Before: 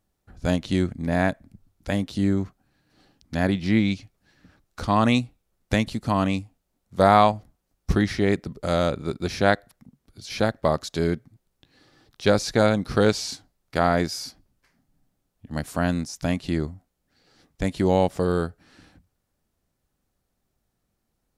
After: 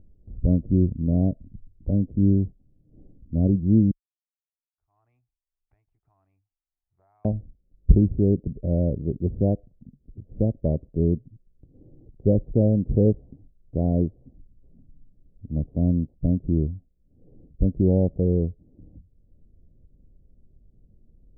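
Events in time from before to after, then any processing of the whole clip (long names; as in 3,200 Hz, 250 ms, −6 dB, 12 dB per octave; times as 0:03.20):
0:03.91–0:07.25: elliptic high-pass filter 2,400 Hz, stop band 80 dB
whole clip: Butterworth low-pass 580 Hz 36 dB per octave; spectral tilt −4 dB per octave; upward compression, threshold −34 dBFS; level −6.5 dB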